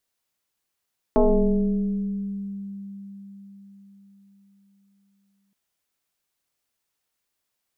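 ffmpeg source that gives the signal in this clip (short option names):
-f lavfi -i "aevalsrc='0.224*pow(10,-3*t/4.8)*sin(2*PI*198*t+2.8*pow(10,-3*t/2.28)*sin(2*PI*1.11*198*t))':d=4.37:s=44100"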